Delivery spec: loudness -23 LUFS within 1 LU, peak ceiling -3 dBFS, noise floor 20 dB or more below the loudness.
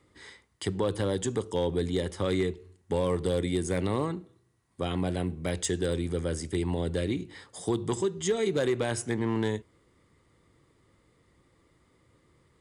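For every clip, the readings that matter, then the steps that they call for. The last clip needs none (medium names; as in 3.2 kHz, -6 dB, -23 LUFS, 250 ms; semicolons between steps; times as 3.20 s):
clipped samples 0.2%; clipping level -19.0 dBFS; loudness -30.0 LUFS; peak level -19.0 dBFS; loudness target -23.0 LUFS
-> clip repair -19 dBFS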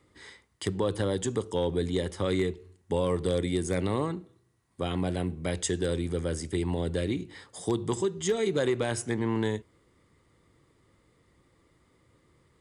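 clipped samples 0.0%; loudness -30.0 LUFS; peak level -13.5 dBFS; loudness target -23.0 LUFS
-> trim +7 dB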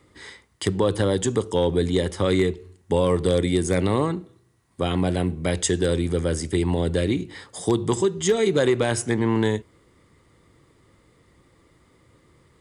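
loudness -23.0 LUFS; peak level -6.5 dBFS; noise floor -60 dBFS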